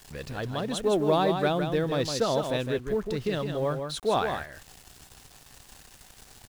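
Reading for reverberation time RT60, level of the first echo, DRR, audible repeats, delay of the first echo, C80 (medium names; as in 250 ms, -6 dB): no reverb, -6.5 dB, no reverb, 1, 159 ms, no reverb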